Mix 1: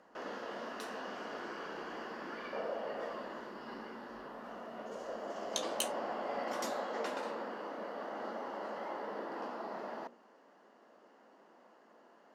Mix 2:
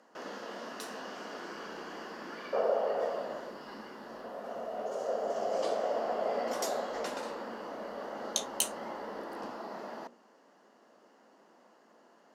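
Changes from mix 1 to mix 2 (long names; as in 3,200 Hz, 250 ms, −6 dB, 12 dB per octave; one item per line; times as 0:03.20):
speech: entry +2.80 s
second sound +10.5 dB
master: add bass and treble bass +3 dB, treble +8 dB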